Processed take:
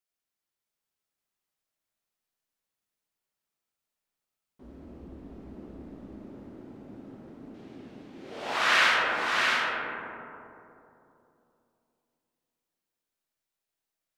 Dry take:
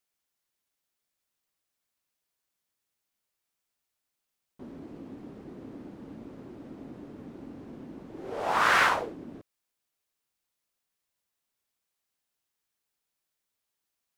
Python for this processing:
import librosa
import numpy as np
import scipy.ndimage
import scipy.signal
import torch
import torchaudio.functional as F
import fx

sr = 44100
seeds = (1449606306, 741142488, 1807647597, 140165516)

p1 = fx.octave_divider(x, sr, octaves=2, level_db=1.0, at=(4.63, 5.23))
p2 = fx.weighting(p1, sr, curve='D', at=(7.54, 8.98))
p3 = p2 + fx.echo_single(p2, sr, ms=663, db=-4.0, dry=0)
p4 = fx.rev_freeverb(p3, sr, rt60_s=3.0, hf_ratio=0.3, predelay_ms=10, drr_db=-1.5)
y = p4 * 10.0 ** (-7.5 / 20.0)